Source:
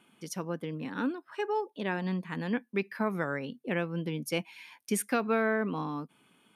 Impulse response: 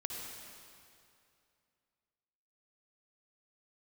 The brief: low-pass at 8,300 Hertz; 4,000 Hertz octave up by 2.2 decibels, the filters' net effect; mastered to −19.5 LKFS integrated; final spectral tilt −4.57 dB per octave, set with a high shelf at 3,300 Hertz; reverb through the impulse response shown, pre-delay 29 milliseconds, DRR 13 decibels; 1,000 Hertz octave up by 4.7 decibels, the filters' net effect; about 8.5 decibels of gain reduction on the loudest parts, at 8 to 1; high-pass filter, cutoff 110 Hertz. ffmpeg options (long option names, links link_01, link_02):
-filter_complex "[0:a]highpass=110,lowpass=8300,equalizer=frequency=1000:width_type=o:gain=6.5,highshelf=frequency=3300:gain=-8,equalizer=frequency=4000:width_type=o:gain=9,acompressor=threshold=-30dB:ratio=8,asplit=2[link_01][link_02];[1:a]atrim=start_sample=2205,adelay=29[link_03];[link_02][link_03]afir=irnorm=-1:irlink=0,volume=-13.5dB[link_04];[link_01][link_04]amix=inputs=2:normalize=0,volume=17dB"